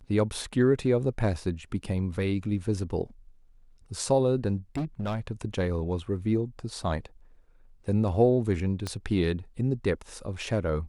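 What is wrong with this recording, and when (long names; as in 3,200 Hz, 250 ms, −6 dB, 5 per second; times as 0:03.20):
0:04.75–0:05.20: clipping −26 dBFS
0:08.87: click −18 dBFS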